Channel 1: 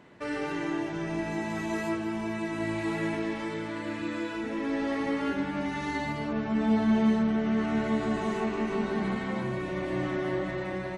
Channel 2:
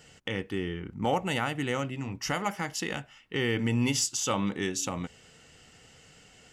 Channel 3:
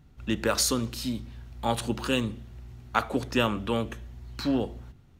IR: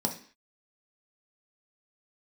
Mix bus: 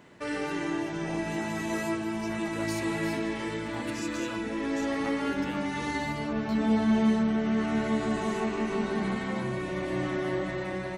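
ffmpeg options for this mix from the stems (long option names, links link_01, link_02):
-filter_complex "[0:a]highshelf=frequency=6200:gain=9,volume=0dB[link_01];[1:a]volume=-16.5dB[link_02];[2:a]acompressor=threshold=-30dB:ratio=2.5,adelay=2100,volume=-11dB[link_03];[link_01][link_02][link_03]amix=inputs=3:normalize=0"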